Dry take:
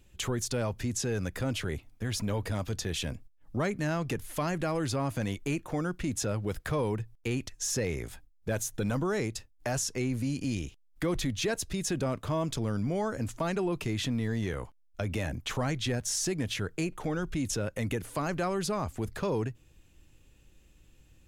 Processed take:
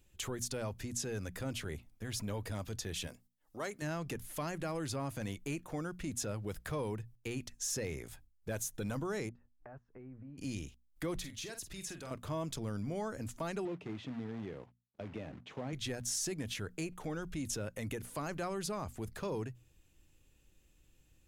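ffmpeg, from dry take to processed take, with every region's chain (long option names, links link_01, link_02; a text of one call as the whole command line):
ffmpeg -i in.wav -filter_complex "[0:a]asettb=1/sr,asplit=3[link_01][link_02][link_03];[link_01]atrim=end=3.074[link_04];[link_02]atrim=start=3.07:end=3.82,asetpts=PTS-STARTPTS,afade=type=in:duration=0.004:curve=qsin,afade=type=out:start_time=0.746:duration=0.004:curve=qsin,bass=frequency=250:gain=-15,treble=frequency=4000:gain=4,bandreject=frequency=2400:width=14[link_05];[link_03]atrim=start=3.816[link_06];[link_04][link_05]acrossfade=duration=0.004:curve1=hsin:curve2=qsin[link_07];[link_07][link_06]acrossfade=duration=0.004:curve1=qsin:curve2=hsin,asettb=1/sr,asplit=3[link_08][link_09][link_10];[link_08]atrim=end=9.294[link_11];[link_09]atrim=start=9.29:end=10.38,asetpts=PTS-STARTPTS,afade=type=in:duration=0.004:curve=qsin,afade=type=out:start_time=1.086:duration=0.004:curve=qsin,aemphasis=mode=production:type=75kf,acompressor=threshold=-39dB:ratio=6:attack=3.2:release=140:knee=1:detection=peak,lowpass=frequency=1500:width=0.5412,lowpass=frequency=1500:width=1.3066[link_12];[link_10]atrim=start=10.376[link_13];[link_11][link_12]acrossfade=duration=0.004:curve1=hsin:curve2=qsin[link_14];[link_14][link_13]acrossfade=duration=0.004:curve1=qsin:curve2=hsin,asettb=1/sr,asplit=3[link_15][link_16][link_17];[link_15]atrim=end=11.194[link_18];[link_16]atrim=start=11.19:end=12.11,asetpts=PTS-STARTPTS,afade=type=in:duration=0.004:curve=qsin,afade=type=out:start_time=0.916:duration=0.004:curve=qsin,acrossover=split=970|3600[link_19][link_20][link_21];[link_19]acompressor=threshold=-40dB:ratio=4[link_22];[link_20]acompressor=threshold=-43dB:ratio=4[link_23];[link_21]acompressor=threshold=-39dB:ratio=4[link_24];[link_22][link_23][link_24]amix=inputs=3:normalize=0,asplit=2[link_25][link_26];[link_26]adelay=47,volume=-9dB[link_27];[link_25][link_27]amix=inputs=2:normalize=0,atrim=end_sample=40572[link_28];[link_17]atrim=start=12.106[link_29];[link_18][link_28]acrossfade=duration=0.004:curve1=hsin:curve2=qsin[link_30];[link_30][link_29]acrossfade=duration=0.004:curve1=qsin:curve2=hsin,asettb=1/sr,asplit=3[link_31][link_32][link_33];[link_31]atrim=end=13.654[link_34];[link_32]atrim=start=13.65:end=15.73,asetpts=PTS-STARTPTS,afade=type=in:duration=0.004:curve=qsin,afade=type=out:start_time=2.076:duration=0.004:curve=qsin,equalizer=frequency=1400:width_type=o:width=1.1:gain=-12.5,acrusher=bits=3:mode=log:mix=0:aa=0.000001,highpass=150,lowpass=2100[link_35];[link_33]atrim=start=15.726[link_36];[link_34][link_35]acrossfade=duration=0.004:curve1=hsin:curve2=qsin[link_37];[link_37][link_36]acrossfade=duration=0.004:curve1=qsin:curve2=hsin,highshelf=frequency=7100:gain=6,bandreject=frequency=60:width_type=h:width=6,bandreject=frequency=120:width_type=h:width=6,bandreject=frequency=180:width_type=h:width=6,bandreject=frequency=240:width_type=h:width=6,volume=-7.5dB" out.wav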